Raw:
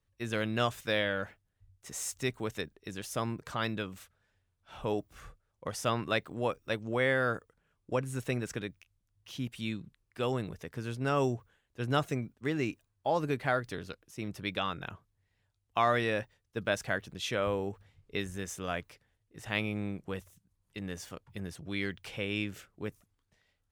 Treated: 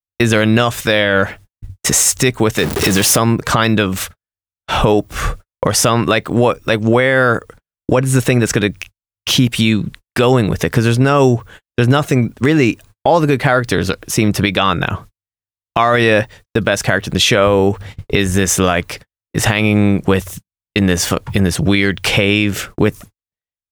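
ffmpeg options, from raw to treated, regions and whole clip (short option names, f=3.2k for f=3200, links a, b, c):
-filter_complex "[0:a]asettb=1/sr,asplit=3[a][b][c];[a]atrim=end=2.584[d];[b]atrim=start=2.58:end=3.18,asetpts=PTS-STARTPTS,afade=t=in:d=0.004:c=qsin,afade=t=out:st=0.596:d=0.004:c=qsin,aeval=exprs='val(0)+0.5*0.0112*sgn(val(0))':c=same,highpass=85[e];[c]atrim=start=3.176[f];[d][e]acrossfade=d=0.004:c1=hsin:c2=qsin[g];[g][f]acrossfade=d=0.004:c1=qsin:c2=hsin,agate=range=-59dB:threshold=-59dB:ratio=16:detection=peak,acompressor=threshold=-45dB:ratio=3,alimiter=level_in=34.5dB:limit=-1dB:release=50:level=0:latency=1,volume=-1dB"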